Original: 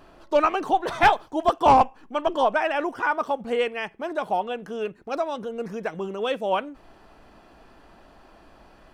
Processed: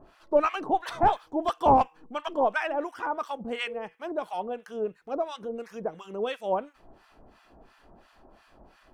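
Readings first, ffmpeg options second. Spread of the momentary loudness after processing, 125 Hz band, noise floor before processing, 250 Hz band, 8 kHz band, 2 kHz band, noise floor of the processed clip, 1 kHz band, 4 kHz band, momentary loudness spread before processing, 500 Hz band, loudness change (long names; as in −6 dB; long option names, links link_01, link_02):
12 LU, −2.5 dB, −53 dBFS, −3.0 dB, can't be measured, −7.5 dB, −61 dBFS, −4.5 dB, −6.0 dB, 12 LU, −4.0 dB, −4.5 dB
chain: -filter_complex "[0:a]bandreject=frequency=159.8:width_type=h:width=4,bandreject=frequency=319.6:width_type=h:width=4,bandreject=frequency=479.4:width_type=h:width=4,acrossover=split=990[link_01][link_02];[link_01]aeval=exprs='val(0)*(1-1/2+1/2*cos(2*PI*2.9*n/s))':channel_layout=same[link_03];[link_02]aeval=exprs='val(0)*(1-1/2-1/2*cos(2*PI*2.9*n/s))':channel_layout=same[link_04];[link_03][link_04]amix=inputs=2:normalize=0"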